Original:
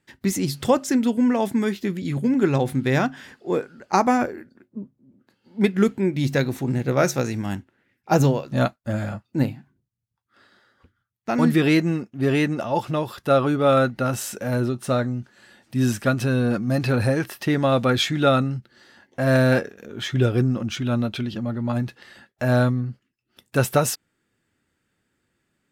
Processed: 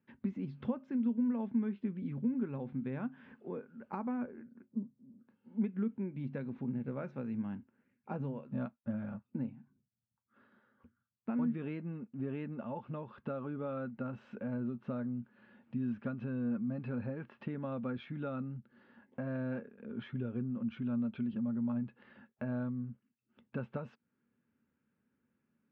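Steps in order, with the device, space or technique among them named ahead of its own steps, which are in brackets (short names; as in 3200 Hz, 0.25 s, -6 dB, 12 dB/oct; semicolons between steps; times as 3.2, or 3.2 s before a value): bass amplifier (compressor 3:1, threshold -33 dBFS, peak gain reduction 15 dB; speaker cabinet 83–2200 Hz, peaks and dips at 100 Hz -5 dB, 230 Hz +10 dB, 330 Hz -7 dB, 710 Hz -8 dB, 1300 Hz -3 dB, 1900 Hz -10 dB); gain -6.5 dB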